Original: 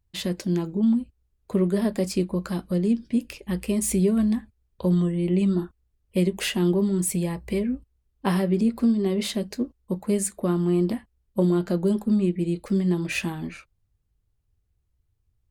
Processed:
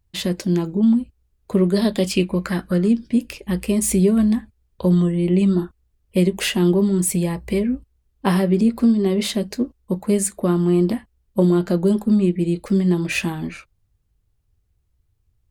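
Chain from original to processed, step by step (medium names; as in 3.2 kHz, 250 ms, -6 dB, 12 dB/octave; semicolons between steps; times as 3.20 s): 1.74–2.88 s: peaking EQ 4.5 kHz -> 1.3 kHz +15 dB 0.44 oct; trim +5 dB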